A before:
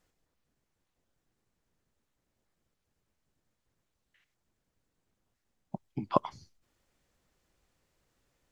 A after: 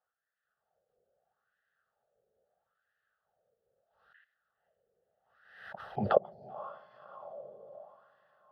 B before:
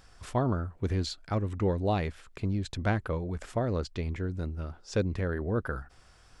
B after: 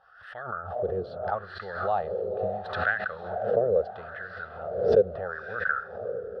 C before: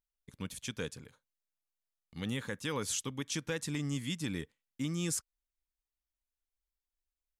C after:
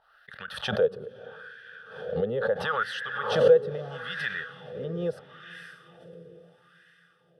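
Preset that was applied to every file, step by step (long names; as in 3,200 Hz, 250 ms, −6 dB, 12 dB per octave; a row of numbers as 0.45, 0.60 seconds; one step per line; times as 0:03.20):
high-shelf EQ 3,200 Hz −8 dB
automatic gain control gain up to 11 dB
phaser with its sweep stopped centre 1,500 Hz, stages 8
on a send: feedback delay with all-pass diffusion 513 ms, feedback 53%, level −9 dB
on the sum: LFO wah 0.76 Hz 440–1,800 Hz, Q 4
parametric band 280 Hz −7.5 dB 0.22 octaves
background raised ahead of every attack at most 69 dB per second
normalise the peak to −9 dBFS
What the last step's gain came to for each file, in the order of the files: +5.5, +5.0, +13.0 decibels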